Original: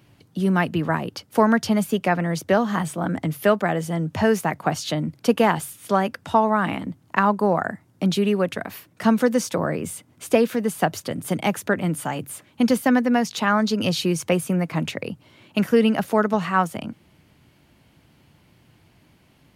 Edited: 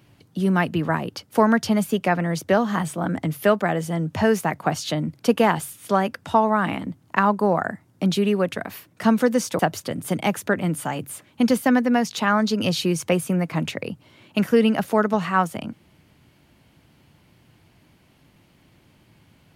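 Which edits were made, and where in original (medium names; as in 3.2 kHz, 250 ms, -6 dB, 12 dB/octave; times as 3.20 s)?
9.59–10.79 s: delete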